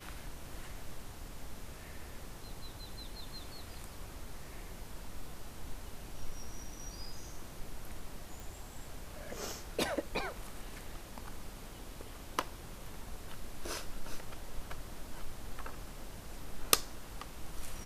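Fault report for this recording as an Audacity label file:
8.400000	8.400000	pop

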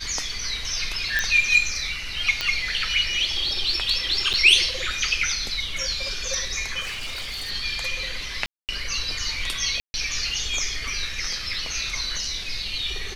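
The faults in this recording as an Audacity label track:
1.190000	1.190000	pop -8 dBFS
2.410000	2.410000	pop -9 dBFS
4.330000	4.340000	gap 7.3 ms
6.800000	7.510000	clipped -28 dBFS
8.460000	8.690000	gap 0.228 s
9.800000	9.940000	gap 0.14 s

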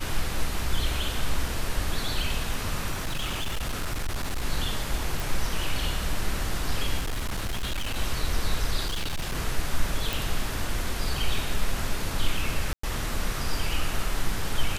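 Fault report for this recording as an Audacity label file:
2.910000	4.450000	clipped -24.5 dBFS
5.200000	5.200000	pop
6.990000	7.970000	clipped -25 dBFS
8.860000	9.360000	clipped -25 dBFS
10.130000	10.130000	pop
12.730000	12.830000	gap 0.104 s

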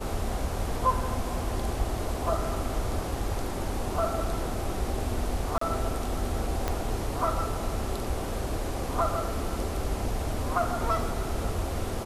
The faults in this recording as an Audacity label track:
5.580000	5.610000	gap 34 ms
6.680000	6.680000	pop -13 dBFS

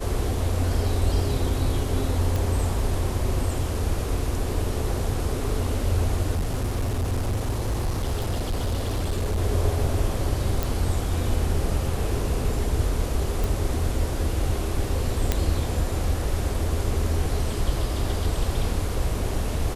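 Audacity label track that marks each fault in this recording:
2.360000	2.360000	pop
6.310000	9.380000	clipped -21 dBFS
10.630000	10.630000	pop
13.440000	13.440000	pop
15.320000	15.320000	pop -7 dBFS

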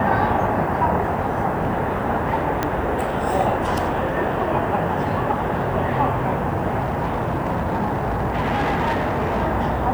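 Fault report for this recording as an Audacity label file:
2.630000	2.630000	pop -7 dBFS
6.790000	9.430000	clipped -17 dBFS

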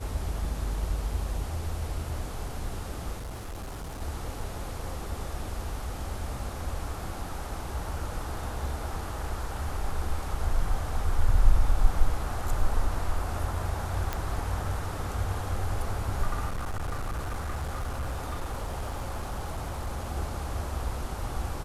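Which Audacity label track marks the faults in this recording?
3.170000	4.020000	clipped -34 dBFS
14.130000	14.130000	pop -15 dBFS
16.470000	20.090000	clipped -28 dBFS

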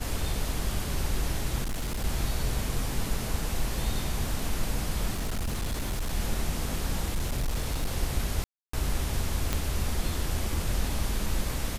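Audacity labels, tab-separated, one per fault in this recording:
1.620000	2.050000	clipped -27 dBFS
5.130000	6.140000	clipped -26 dBFS
7.150000	7.950000	clipped -24 dBFS
8.440000	8.730000	gap 0.294 s
9.530000	9.530000	pop -11 dBFS

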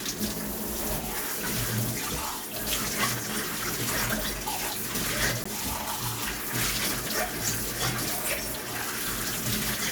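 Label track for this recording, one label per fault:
5.440000	5.460000	gap 15 ms

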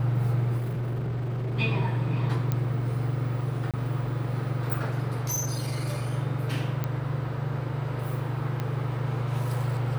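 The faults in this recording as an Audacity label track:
0.570000	1.590000	clipped -27 dBFS
2.520000	2.520000	pop -14 dBFS
3.710000	3.740000	gap 27 ms
5.110000	6.140000	clipped -25 dBFS
6.840000	6.840000	pop -16 dBFS
8.600000	8.600000	pop -18 dBFS

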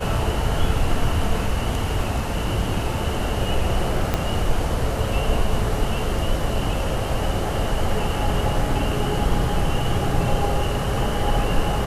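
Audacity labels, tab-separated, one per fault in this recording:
4.140000	4.140000	pop -7 dBFS

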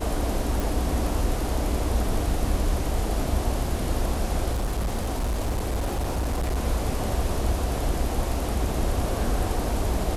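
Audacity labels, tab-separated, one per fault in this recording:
0.600000	0.600000	pop
4.500000	6.570000	clipped -22 dBFS

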